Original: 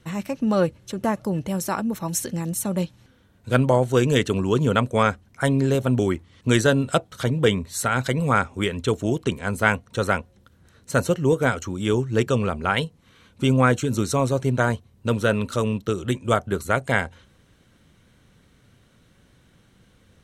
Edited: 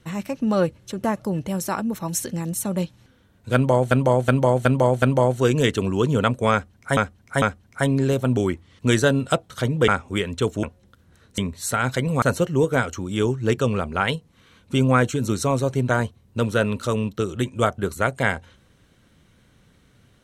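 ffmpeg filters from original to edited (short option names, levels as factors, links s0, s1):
-filter_complex "[0:a]asplit=11[s0][s1][s2][s3][s4][s5][s6][s7][s8][s9][s10];[s0]atrim=end=3.912[s11];[s1]atrim=start=3.538:end=3.912[s12];[s2]atrim=start=3.538:end=3.912[s13];[s3]atrim=start=3.538:end=3.912[s14];[s4]atrim=start=3.538:end=5.492[s15];[s5]atrim=start=5.038:end=5.492[s16];[s6]atrim=start=5.038:end=7.502[s17];[s7]atrim=start=8.338:end=9.092[s18];[s8]atrim=start=10.158:end=10.912[s19];[s9]atrim=start=7.498:end=8.342[s20];[s10]atrim=start=10.908[s21];[s11][s12]acrossfade=d=0.004:c1=hsin:c2=hsin[s22];[s22][s13]acrossfade=d=0.004:c1=hsin:c2=hsin[s23];[s23][s14]acrossfade=d=0.004:c1=hsin:c2=hsin[s24];[s24][s15]acrossfade=d=0.004:c1=hsin:c2=hsin[s25];[s25][s16]acrossfade=d=0.004:c1=hsin:c2=hsin[s26];[s26][s17]acrossfade=d=0.004:c1=hsin:c2=hsin[s27];[s27][s18]acrossfade=d=0.004:c1=hsin:c2=hsin[s28];[s28][s19]acrossfade=d=0.004:c1=hsin:c2=hsin[s29];[s29][s20]acrossfade=d=0.004:c1=hsin:c2=hsin[s30];[s30][s21]acrossfade=d=0.004:c1=hsin:c2=hsin"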